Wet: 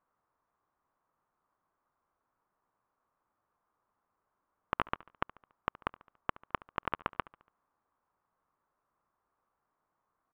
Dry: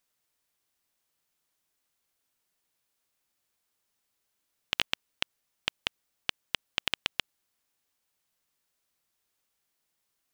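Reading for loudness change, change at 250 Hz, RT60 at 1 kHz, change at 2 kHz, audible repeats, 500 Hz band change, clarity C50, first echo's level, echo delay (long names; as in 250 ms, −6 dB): −5.5 dB, +4.5 dB, no reverb audible, −6.5 dB, 3, +4.0 dB, no reverb audible, −21.0 dB, 71 ms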